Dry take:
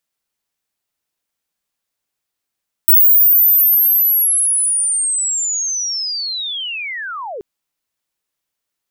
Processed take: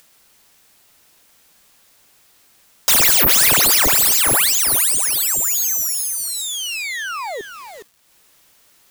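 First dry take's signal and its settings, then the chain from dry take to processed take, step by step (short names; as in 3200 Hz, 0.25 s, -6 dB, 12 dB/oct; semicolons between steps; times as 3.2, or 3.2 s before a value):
chirp linear 16000 Hz -> 370 Hz -5.5 dBFS -> -24.5 dBFS 4.53 s
self-modulated delay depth 0.29 ms; upward compressor, threshold -33 dBFS; lo-fi delay 0.413 s, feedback 35%, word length 6-bit, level -7 dB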